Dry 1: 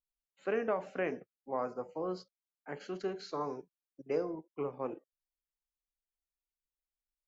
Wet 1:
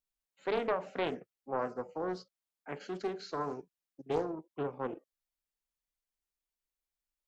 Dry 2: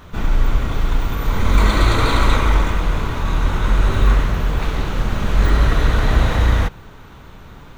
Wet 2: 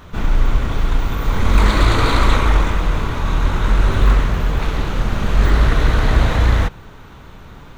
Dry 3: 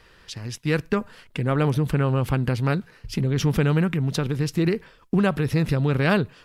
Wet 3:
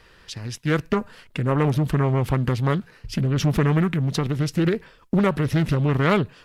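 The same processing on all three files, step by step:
highs frequency-modulated by the lows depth 0.4 ms
level +1 dB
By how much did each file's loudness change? +0.5, +1.0, +1.0 LU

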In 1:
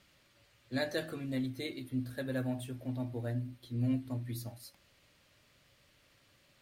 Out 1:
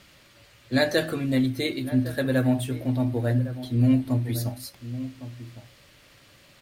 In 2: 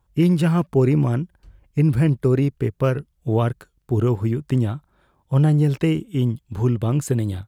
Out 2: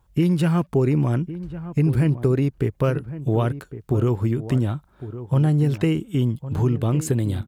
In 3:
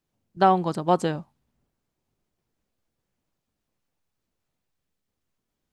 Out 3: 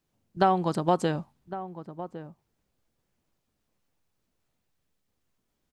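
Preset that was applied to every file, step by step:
downward compressor 2 to 1, threshold −25 dBFS
slap from a distant wall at 190 metres, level −13 dB
normalise the peak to −9 dBFS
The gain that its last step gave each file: +12.5, +4.0, +2.5 decibels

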